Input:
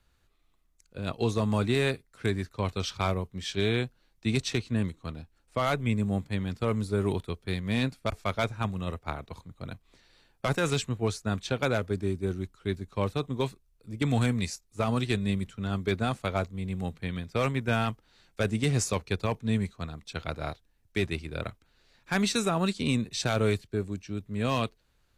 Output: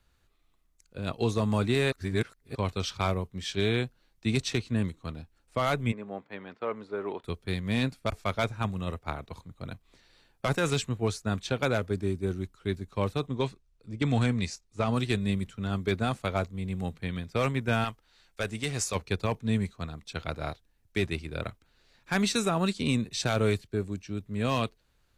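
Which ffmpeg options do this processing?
ffmpeg -i in.wav -filter_complex "[0:a]asplit=3[link_01][link_02][link_03];[link_01]afade=type=out:start_time=5.91:duration=0.02[link_04];[link_02]highpass=440,lowpass=2000,afade=type=in:start_time=5.91:duration=0.02,afade=type=out:start_time=7.23:duration=0.02[link_05];[link_03]afade=type=in:start_time=7.23:duration=0.02[link_06];[link_04][link_05][link_06]amix=inputs=3:normalize=0,asettb=1/sr,asplit=3[link_07][link_08][link_09];[link_07]atrim=end=13.274[link_10];[link_08]atrim=start=13.27:end=14.94,asetpts=PTS-STARTPTS,afade=type=in:duration=0.004:curve=qsin,afade=type=out:start_time=1.666:duration=0.004:curve=qsin,lowpass=6900[link_11];[link_09]atrim=start=14.936[link_12];[link_10][link_11]acrossfade=duration=0.004:curve1=hsin:curve2=qsin[link_13];[link_13][link_12]acrossfade=duration=0.004:curve1=qsin:curve2=hsin,asettb=1/sr,asplit=3[link_14][link_15][link_16];[link_14]atrim=end=17.844[link_17];[link_15]atrim=start=17.84:end=18.95,asetpts=PTS-STARTPTS,afade=type=in:duration=0.004:curve=qsin,afade=type=out:start_time=1.106:duration=0.004:curve=qsin,equalizer=frequency=170:width=0.38:gain=-8.5[link_18];[link_16]atrim=start=18.946[link_19];[link_17][link_18]acrossfade=duration=0.004:curve1=hsin:curve2=qsin[link_20];[link_20][link_19]acrossfade=duration=0.004:curve1=qsin:curve2=hsin,asplit=3[link_21][link_22][link_23];[link_21]atrim=end=1.922[link_24];[link_22]atrim=start=1.918:end=2.552,asetpts=PTS-STARTPTS,areverse[link_25];[link_23]atrim=start=2.548[link_26];[link_24][link_25]acrossfade=duration=0.004:curve1=hsin:curve2=hsin[link_27];[link_27][link_26]acrossfade=duration=0.004:curve1=hsin:curve2=hsin" out.wav

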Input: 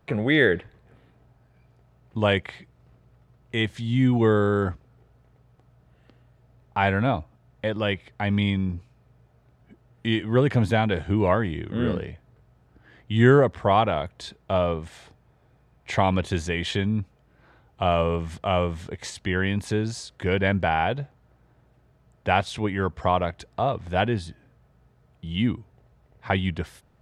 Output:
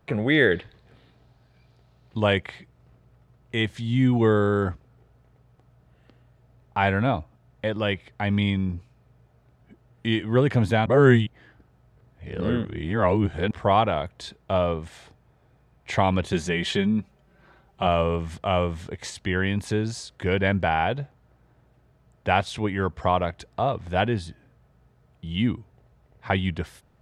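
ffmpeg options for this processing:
ffmpeg -i in.wav -filter_complex "[0:a]asettb=1/sr,asplit=3[link_01][link_02][link_03];[link_01]atrim=end=0.514[link_04];[link_02]atrim=start=0.51:end=2.2,asetpts=PTS-STARTPTS,afade=type=in:duration=0.004:curve=qsin,afade=type=out:start_time=1.686:duration=0.004:curve=qsin,equalizer=frequency=4100:width_type=o:width=0.95:gain=11.5[link_05];[link_03]atrim=start=2.196[link_06];[link_04][link_05]acrossfade=duration=0.004:curve1=hsin:curve2=qsin[link_07];[link_07][link_06]acrossfade=duration=0.004:curve1=qsin:curve2=hsin,asettb=1/sr,asplit=3[link_08][link_09][link_10];[link_08]atrim=end=16.324[link_11];[link_09]atrim=start=16.32:end=17.87,asetpts=PTS-STARTPTS,afade=type=in:duration=0.004:curve=qsin,afade=type=out:start_time=1.546:duration=0.004:curve=qsin,aecho=1:1:5.2:0.65,atrim=end_sample=68355[link_12];[link_10]atrim=start=17.866[link_13];[link_11][link_12]acrossfade=duration=0.004:curve1=hsin:curve2=qsin[link_14];[link_14][link_13]acrossfade=duration=0.004:curve1=qsin:curve2=hsin,asplit=3[link_15][link_16][link_17];[link_15]atrim=end=10.862[link_18];[link_16]atrim=start=10.858:end=13.512,asetpts=PTS-STARTPTS,areverse[link_19];[link_17]atrim=start=13.508[link_20];[link_18][link_19]acrossfade=duration=0.004:curve1=hsin:curve2=hsin[link_21];[link_21][link_20]acrossfade=duration=0.004:curve1=hsin:curve2=hsin" out.wav

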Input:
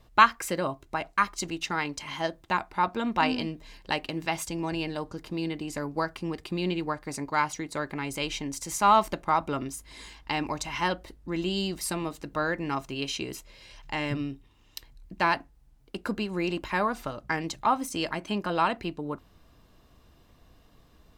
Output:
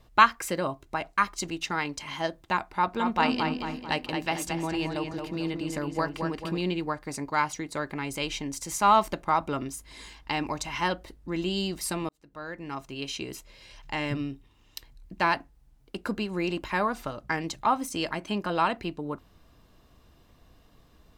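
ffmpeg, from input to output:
ffmpeg -i in.wav -filter_complex "[0:a]asettb=1/sr,asplit=3[link_01][link_02][link_03];[link_01]atrim=end=2.674[link_04];[link_02]atrim=start=2.67:end=6.61,asetpts=PTS-STARTPTS,afade=type=in:duration=0.004:curve=qsin,afade=type=out:start_time=3.936:duration=0.004:curve=qsin,asplit=2[link_05][link_06];[link_06]adelay=222,lowpass=frequency=3700:poles=1,volume=-5dB,asplit=2[link_07][link_08];[link_08]adelay=222,lowpass=frequency=3700:poles=1,volume=0.49,asplit=2[link_09][link_10];[link_10]adelay=222,lowpass=frequency=3700:poles=1,volume=0.49,asplit=2[link_11][link_12];[link_12]adelay=222,lowpass=frequency=3700:poles=1,volume=0.49,asplit=2[link_13][link_14];[link_14]adelay=222,lowpass=frequency=3700:poles=1,volume=0.49,asplit=2[link_15][link_16];[link_16]adelay=222,lowpass=frequency=3700:poles=1,volume=0.49[link_17];[link_05][link_07][link_09][link_11][link_13][link_15][link_17]amix=inputs=7:normalize=0,atrim=end_sample=173754[link_18];[link_03]atrim=start=6.606[link_19];[link_04][link_18]acrossfade=duration=0.004:curve1=hsin:curve2=qsin[link_20];[link_20][link_19]acrossfade=duration=0.004:curve1=qsin:curve2=hsin,asplit=2[link_21][link_22];[link_21]atrim=end=12.09,asetpts=PTS-STARTPTS,afade=type=out:start_time=12.086:duration=0.004:curve=hsin[link_23];[link_22]atrim=start=12.09,asetpts=PTS-STARTPTS,afade=type=in:duration=1.86:curve=qsin[link_24];[link_23][link_24]concat=n=2:v=0:a=1" out.wav

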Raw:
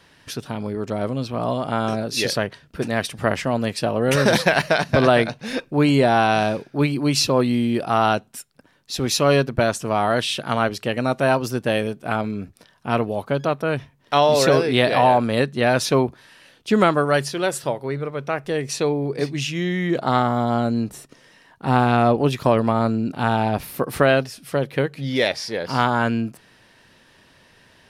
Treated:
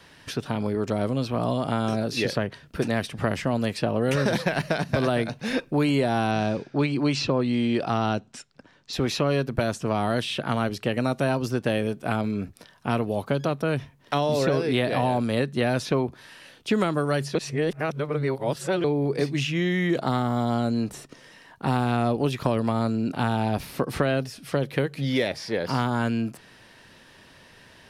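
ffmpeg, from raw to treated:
ffmpeg -i in.wav -filter_complex "[0:a]asettb=1/sr,asplit=3[link_01][link_02][link_03];[link_01]atrim=end=6.314[link_04];[link_02]atrim=start=6.31:end=8.93,asetpts=PTS-STARTPTS,afade=type=in:duration=0.004:curve=qsin,afade=type=out:start_time=2.616:duration=0.004:curve=qsin,lowpass=frequency=7200:width=0.5412,lowpass=frequency=7200:width=1.3066[link_05];[link_03]atrim=start=8.926[link_06];[link_04][link_05]acrossfade=duration=0.004:curve1=hsin:curve2=qsin[link_07];[link_07][link_06]acrossfade=duration=0.004:curve1=qsin:curve2=hsin,asplit=3[link_08][link_09][link_10];[link_08]atrim=end=17.352[link_11];[link_09]atrim=start=17.348:end=18.842,asetpts=PTS-STARTPTS,areverse[link_12];[link_10]atrim=start=18.838[link_13];[link_11][link_12]acrossfade=duration=0.004:curve1=hsin:curve2=hsin[link_14];[link_14][link_13]acrossfade=duration=0.004:curve1=hsin:curve2=hsin,acrossover=split=370|3300|7600[link_15][link_16][link_17][link_18];[link_15]acompressor=threshold=-26dB:ratio=4[link_19];[link_16]acompressor=threshold=-29dB:ratio=4[link_20];[link_17]acompressor=threshold=-44dB:ratio=4[link_21];[link_18]acompressor=threshold=-53dB:ratio=4[link_22];[link_19][link_20][link_21][link_22]amix=inputs=4:normalize=0,volume=2dB" out.wav

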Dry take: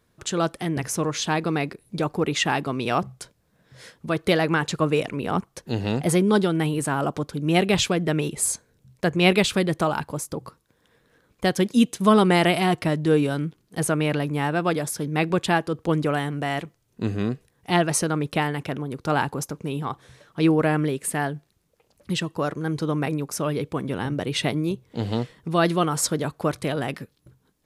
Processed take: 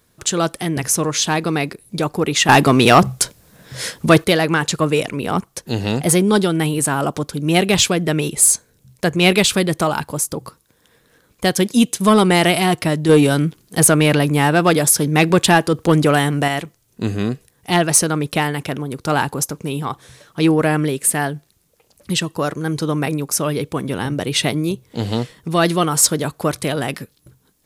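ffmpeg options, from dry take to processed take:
ffmpeg -i in.wav -filter_complex "[0:a]asettb=1/sr,asplit=3[link_01][link_02][link_03];[link_01]atrim=end=13.094[link_04];[link_02]atrim=start=13.09:end=16.48,asetpts=PTS-STARTPTS,afade=type=in:duration=0.004:curve=qsin,afade=type=out:start_time=3.386:duration=0.004:curve=qsin,acontrast=24[link_05];[link_03]atrim=start=16.476[link_06];[link_04][link_05]acrossfade=duration=0.004:curve1=hsin:curve2=qsin[link_07];[link_07][link_06]acrossfade=duration=0.004:curve1=qsin:curve2=hsin,asplit=3[link_08][link_09][link_10];[link_08]atrim=end=2.492[link_11];[link_09]atrim=start=2.488:end=4.242,asetpts=PTS-STARTPTS,volume=11dB[link_12];[link_10]atrim=start=4.238[link_13];[link_11][link_12]acrossfade=duration=0.004:curve1=hsin:curve2=hsin[link_14];[link_14][link_13]acrossfade=duration=0.004:curve1=hsin:curve2=hsin,highshelf=frequency=4700:gain=10,acontrast=44,volume=-1dB" out.wav

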